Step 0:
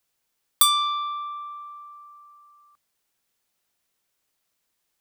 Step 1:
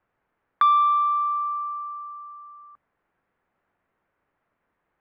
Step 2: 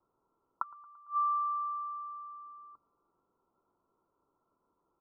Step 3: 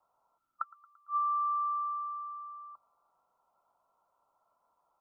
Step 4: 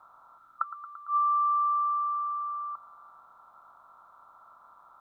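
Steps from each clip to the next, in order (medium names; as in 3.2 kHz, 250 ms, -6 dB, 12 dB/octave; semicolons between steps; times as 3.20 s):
low-pass 1.8 kHz 24 dB/octave; in parallel at 0 dB: compression, threshold -33 dBFS, peak gain reduction 11 dB; on the sum: trim +4 dB
inverted gate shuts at -18 dBFS, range -30 dB; rippled Chebyshev low-pass 1.4 kHz, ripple 9 dB; feedback delay 113 ms, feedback 59%, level -23 dB; trim +3.5 dB
time-frequency box 0.38–1.09 s, 380–1200 Hz -16 dB; resonant low shelf 500 Hz -10 dB, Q 3; compression, threshold -31 dBFS, peak gain reduction 6 dB; trim +2.5 dB
spectral levelling over time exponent 0.6; trim +4.5 dB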